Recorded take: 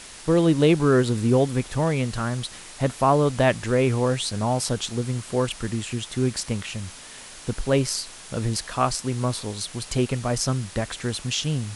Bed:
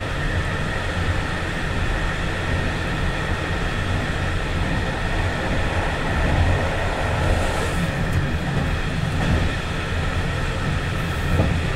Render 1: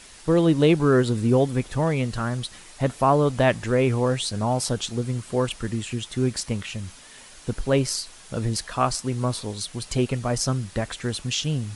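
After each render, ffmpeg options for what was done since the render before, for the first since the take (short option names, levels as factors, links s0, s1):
-af "afftdn=nr=6:nf=-42"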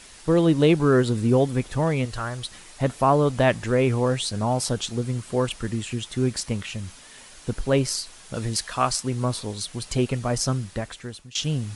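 -filter_complex "[0:a]asettb=1/sr,asplit=3[s0][s1][s2];[s0]atrim=end=2.054[s3];[s1]atrim=start=2.05:end=2.45,asetpts=PTS-STARTPTS,afade=t=in:d=0.004:c=qsin,afade=t=out:st=0.396:d=0.004:c=qsin,equalizer=f=200:t=o:w=1.1:g=-12.5[s4];[s2]atrim=start=2.446[s5];[s3][s4]acrossfade=d=0.004:c1=hsin:c2=qsin[s6];[s6][s5]acrossfade=d=0.004:c1=qsin:c2=hsin,asettb=1/sr,asplit=3[s7][s8][s9];[s7]atrim=end=8.344[s10];[s8]atrim=start=8.34:end=9.03,asetpts=PTS-STARTPTS,afade=t=in:d=0.004:c=qsin,afade=t=out:st=0.686:d=0.004:c=qsin,tiltshelf=f=970:g=-3[s11];[s9]atrim=start=9.026[s12];[s10][s11]acrossfade=d=0.004:c1=hsin:c2=qsin[s13];[s13][s12]acrossfade=d=0.004:c1=qsin:c2=hsin,asplit=2[s14][s15];[s14]atrim=end=11.35,asetpts=PTS-STARTPTS,afade=t=out:st=10.54:d=0.81:silence=0.0841395[s16];[s15]atrim=start=11.35,asetpts=PTS-STARTPTS,afade=t=in:d=0.004:c=hsin:silence=0.0841395[s17];[s16][s17]concat=n=2:v=0:a=1"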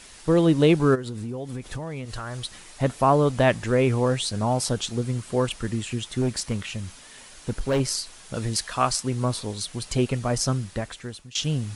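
-filter_complex "[0:a]asplit=3[s0][s1][s2];[s0]afade=t=out:st=0.94:d=0.02[s3];[s1]acompressor=threshold=0.0398:ratio=12:attack=3.2:release=140:knee=1:detection=peak,afade=t=in:st=0.94:d=0.02,afade=t=out:st=2.34:d=0.02[s4];[s2]afade=t=in:st=2.34:d=0.02[s5];[s3][s4][s5]amix=inputs=3:normalize=0,asettb=1/sr,asplit=3[s6][s7][s8];[s6]atrim=end=6.214[s9];[s7]atrim=start=6.21:end=7.8,asetpts=PTS-STARTPTS,afade=t=in:d=0.004:c=qsin,afade=t=out:st=1.586:d=0.004:c=qsin,asoftclip=type=hard:threshold=0.119[s10];[s8]atrim=start=7.796[s11];[s9][s10]acrossfade=d=0.004:c1=hsin:c2=qsin[s12];[s12][s11]acrossfade=d=0.004:c1=qsin:c2=hsin"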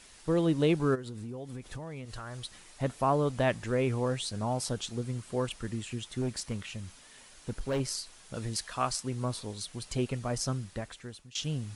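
-af "volume=0.398"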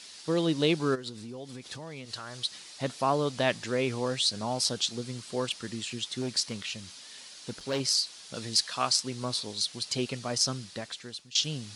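-af "highpass=150,equalizer=f=4500:t=o:w=1.3:g=13"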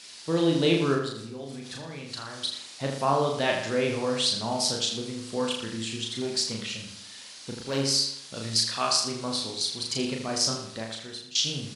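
-filter_complex "[0:a]asplit=2[s0][s1];[s1]adelay=36,volume=0.708[s2];[s0][s2]amix=inputs=2:normalize=0,asplit=2[s3][s4];[s4]adelay=80,lowpass=f=4700:p=1,volume=0.501,asplit=2[s5][s6];[s6]adelay=80,lowpass=f=4700:p=1,volume=0.47,asplit=2[s7][s8];[s8]adelay=80,lowpass=f=4700:p=1,volume=0.47,asplit=2[s9][s10];[s10]adelay=80,lowpass=f=4700:p=1,volume=0.47,asplit=2[s11][s12];[s12]adelay=80,lowpass=f=4700:p=1,volume=0.47,asplit=2[s13][s14];[s14]adelay=80,lowpass=f=4700:p=1,volume=0.47[s15];[s5][s7][s9][s11][s13][s15]amix=inputs=6:normalize=0[s16];[s3][s16]amix=inputs=2:normalize=0"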